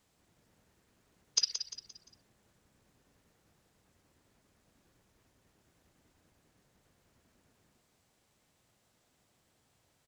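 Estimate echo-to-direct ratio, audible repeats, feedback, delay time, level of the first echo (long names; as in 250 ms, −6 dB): −8.5 dB, 4, 39%, 174 ms, −9.0 dB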